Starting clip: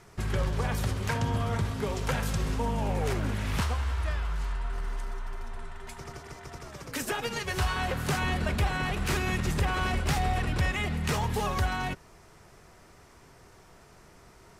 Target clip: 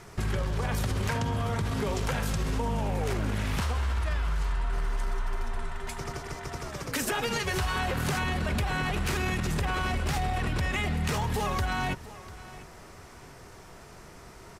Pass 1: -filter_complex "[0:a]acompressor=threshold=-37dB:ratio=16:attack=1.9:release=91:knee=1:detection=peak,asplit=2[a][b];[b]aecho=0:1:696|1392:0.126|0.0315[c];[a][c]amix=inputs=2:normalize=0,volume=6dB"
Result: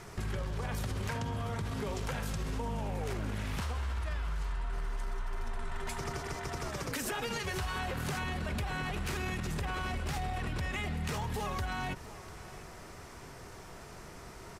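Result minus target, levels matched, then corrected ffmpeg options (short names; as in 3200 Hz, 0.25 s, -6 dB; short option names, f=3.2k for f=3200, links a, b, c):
compressor: peak gain reduction +6.5 dB
-filter_complex "[0:a]acompressor=threshold=-30dB:ratio=16:attack=1.9:release=91:knee=1:detection=peak,asplit=2[a][b];[b]aecho=0:1:696|1392:0.126|0.0315[c];[a][c]amix=inputs=2:normalize=0,volume=6dB"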